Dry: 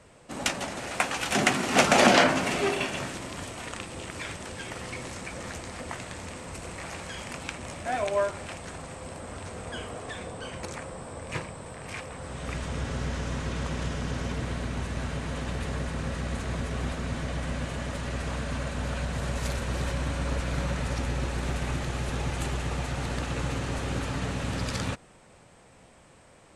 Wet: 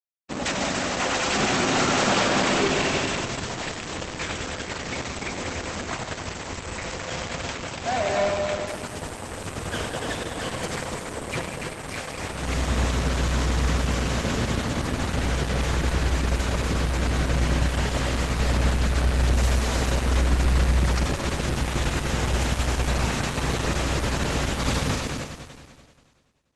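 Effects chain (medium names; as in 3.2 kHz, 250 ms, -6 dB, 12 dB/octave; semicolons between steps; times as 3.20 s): fuzz box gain 33 dB, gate -41 dBFS; multi-head delay 96 ms, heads all three, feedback 48%, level -7.5 dB; trim -8.5 dB; Opus 12 kbps 48 kHz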